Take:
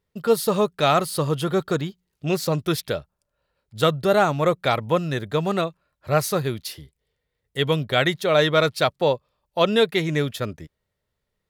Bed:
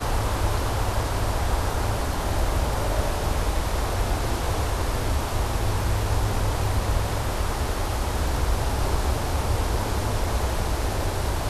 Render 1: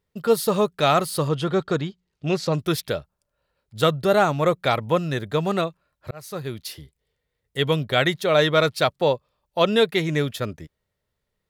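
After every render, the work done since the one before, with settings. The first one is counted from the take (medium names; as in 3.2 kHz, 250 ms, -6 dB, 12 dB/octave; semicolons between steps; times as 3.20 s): 1.28–2.54 s: low-pass 6.2 kHz; 6.11–6.78 s: fade in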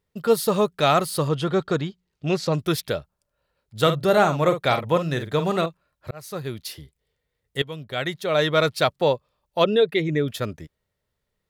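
3.81–5.66 s: doubling 48 ms -9 dB; 7.62–8.73 s: fade in linear, from -17.5 dB; 9.64–10.28 s: resonances exaggerated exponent 1.5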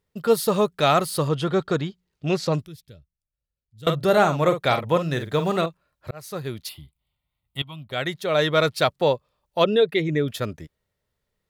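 2.66–3.87 s: amplifier tone stack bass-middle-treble 10-0-1; 5.13–5.57 s: companded quantiser 8-bit; 6.69–7.91 s: static phaser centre 1.7 kHz, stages 6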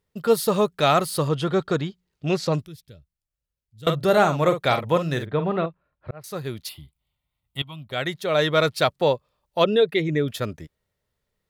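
5.25–6.24 s: distance through air 430 m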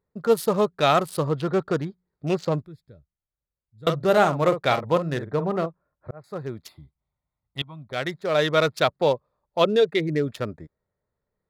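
local Wiener filter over 15 samples; bass shelf 120 Hz -5.5 dB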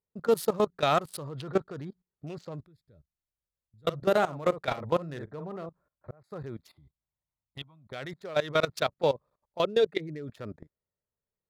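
level held to a coarse grid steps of 19 dB; peak limiter -14.5 dBFS, peak gain reduction 7 dB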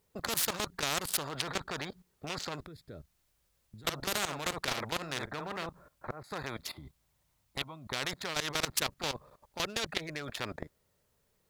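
in parallel at +1 dB: peak limiter -24.5 dBFS, peak gain reduction 10 dB; on the sum: spectrum-flattening compressor 4:1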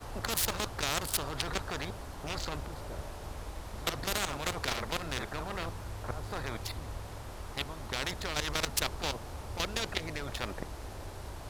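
add bed -17.5 dB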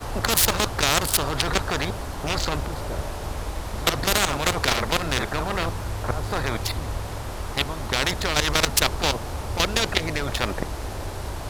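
trim +11.5 dB; peak limiter -2 dBFS, peak gain reduction 1.5 dB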